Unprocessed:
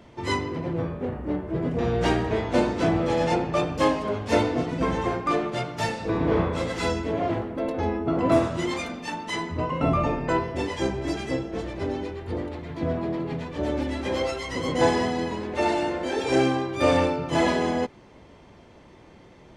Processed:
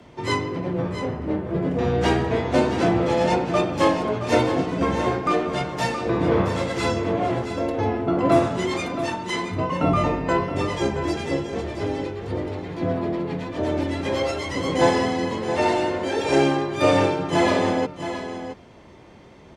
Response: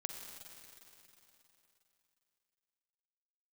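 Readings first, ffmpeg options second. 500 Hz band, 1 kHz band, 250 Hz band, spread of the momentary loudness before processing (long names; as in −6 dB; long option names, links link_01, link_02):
+3.0 dB, +3.5 dB, +2.5 dB, 8 LU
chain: -af "afreqshift=14,aecho=1:1:672:0.316,volume=2.5dB"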